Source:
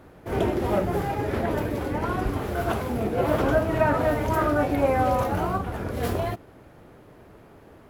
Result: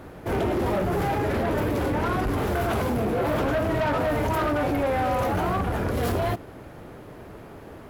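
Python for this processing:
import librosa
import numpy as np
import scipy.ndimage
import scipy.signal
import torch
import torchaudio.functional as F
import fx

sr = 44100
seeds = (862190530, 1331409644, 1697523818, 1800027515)

p1 = fx.over_compress(x, sr, threshold_db=-28.0, ratio=-1.0)
p2 = x + F.gain(torch.from_numpy(p1), -1.0).numpy()
y = 10.0 ** (-20.0 / 20.0) * np.tanh(p2 / 10.0 ** (-20.0 / 20.0))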